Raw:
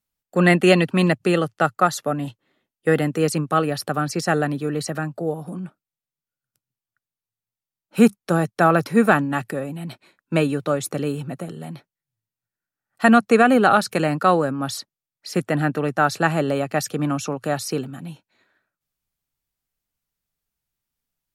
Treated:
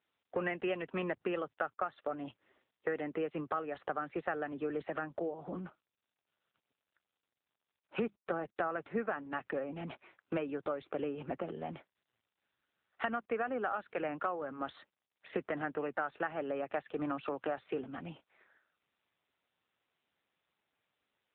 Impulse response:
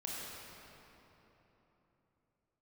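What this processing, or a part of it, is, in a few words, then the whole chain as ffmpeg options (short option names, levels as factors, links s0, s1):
voicemail: -af "highpass=350,lowpass=2800,acompressor=threshold=0.0251:ratio=8" -ar 8000 -c:a libopencore_amrnb -b:a 7950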